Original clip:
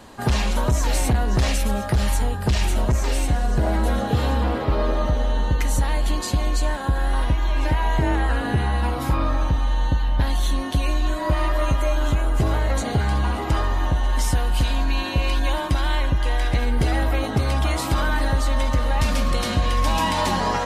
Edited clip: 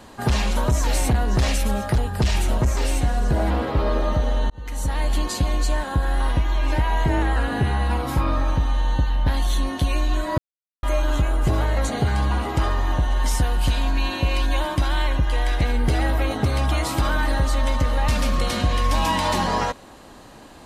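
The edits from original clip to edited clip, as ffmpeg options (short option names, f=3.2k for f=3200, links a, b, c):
-filter_complex "[0:a]asplit=6[a][b][c][d][e][f];[a]atrim=end=1.982[g];[b]atrim=start=2.248:end=3.772[h];[c]atrim=start=4.428:end=5.43,asetpts=PTS-STARTPTS,afade=t=out:st=0.998:d=0.004:c=hsin[i];[d]atrim=start=5.43:end=11.31,asetpts=PTS-STARTPTS,afade=t=in:d=0.56,afade=t=out:st=5.876:d=0.004:c=hsin[j];[e]atrim=start=11.31:end=11.76,asetpts=PTS-STARTPTS,volume=0[k];[f]atrim=start=11.76,asetpts=PTS-STARTPTS,afade=t=in:d=0.004:c=hsin[l];[g][h]acrossfade=d=0.004:c1=hsin:c2=hsin[m];[i][j][k][l]concat=n=4:v=0:a=1[n];[m][n]acrossfade=d=0.004:c1=hsin:c2=hsin"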